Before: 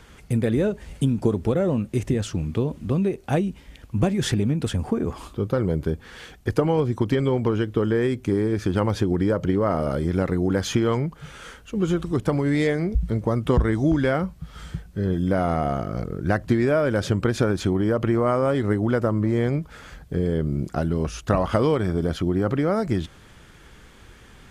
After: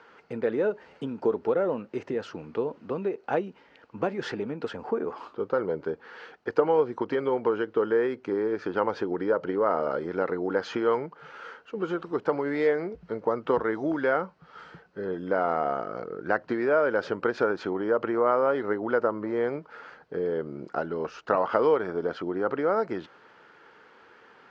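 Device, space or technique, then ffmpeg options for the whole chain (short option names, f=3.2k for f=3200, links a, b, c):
phone earpiece: -af "highpass=360,equalizer=f=460:t=q:w=4:g=6,equalizer=f=900:t=q:w=4:g=6,equalizer=f=1.4k:t=q:w=4:g=6,equalizer=f=2.3k:t=q:w=4:g=-3,equalizer=f=3.5k:t=q:w=4:g=-9,lowpass=f=4.3k:w=0.5412,lowpass=f=4.3k:w=1.3066,volume=-3.5dB"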